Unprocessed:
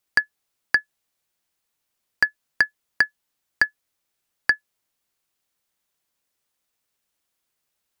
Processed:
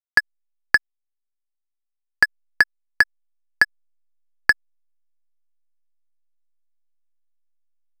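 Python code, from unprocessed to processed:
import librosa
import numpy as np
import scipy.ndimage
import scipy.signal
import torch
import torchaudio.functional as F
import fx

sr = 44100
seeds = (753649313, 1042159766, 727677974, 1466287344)

y = fx.backlash(x, sr, play_db=-19.0)
y = F.gain(torch.from_numpy(y), 4.0).numpy()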